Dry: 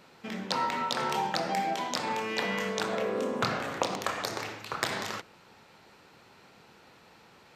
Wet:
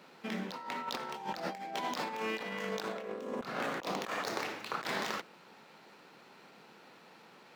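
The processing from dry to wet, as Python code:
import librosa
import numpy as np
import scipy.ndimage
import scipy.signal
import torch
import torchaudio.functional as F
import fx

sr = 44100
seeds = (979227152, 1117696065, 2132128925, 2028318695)

y = scipy.signal.medfilt(x, 5)
y = scipy.signal.sosfilt(scipy.signal.butter(4, 160.0, 'highpass', fs=sr, output='sos'), y)
y = fx.over_compress(y, sr, threshold_db=-34.0, ratio=-0.5)
y = y * 10.0 ** (-3.0 / 20.0)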